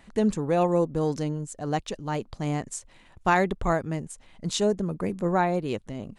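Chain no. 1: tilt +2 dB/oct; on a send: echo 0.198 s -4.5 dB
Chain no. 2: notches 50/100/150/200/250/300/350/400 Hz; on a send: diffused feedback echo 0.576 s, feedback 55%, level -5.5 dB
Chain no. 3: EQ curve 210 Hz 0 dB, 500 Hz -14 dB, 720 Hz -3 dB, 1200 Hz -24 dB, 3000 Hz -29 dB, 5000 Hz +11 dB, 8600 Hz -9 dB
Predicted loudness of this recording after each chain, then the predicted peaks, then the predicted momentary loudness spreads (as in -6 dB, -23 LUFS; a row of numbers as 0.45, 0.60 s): -27.5, -26.5, -31.5 LUFS; -8.0, -9.5, -13.5 dBFS; 9, 7, 9 LU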